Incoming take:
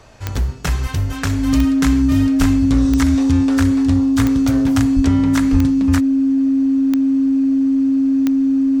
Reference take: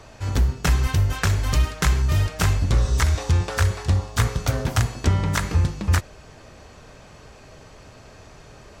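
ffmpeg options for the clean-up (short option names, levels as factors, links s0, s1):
-filter_complex "[0:a]adeclick=t=4,bandreject=f=270:w=30,asplit=3[s0][s1][s2];[s0]afade=t=out:st=2.39:d=0.02[s3];[s1]highpass=f=140:w=0.5412,highpass=f=140:w=1.3066,afade=t=in:st=2.39:d=0.02,afade=t=out:st=2.51:d=0.02[s4];[s2]afade=t=in:st=2.51:d=0.02[s5];[s3][s4][s5]amix=inputs=3:normalize=0,asplit=3[s6][s7][s8];[s6]afade=t=out:st=4.95:d=0.02[s9];[s7]highpass=f=140:w=0.5412,highpass=f=140:w=1.3066,afade=t=in:st=4.95:d=0.02,afade=t=out:st=5.07:d=0.02[s10];[s8]afade=t=in:st=5.07:d=0.02[s11];[s9][s10][s11]amix=inputs=3:normalize=0,asplit=3[s12][s13][s14];[s12]afade=t=out:st=5.51:d=0.02[s15];[s13]highpass=f=140:w=0.5412,highpass=f=140:w=1.3066,afade=t=in:st=5.51:d=0.02,afade=t=out:st=5.63:d=0.02[s16];[s14]afade=t=in:st=5.63:d=0.02[s17];[s15][s16][s17]amix=inputs=3:normalize=0"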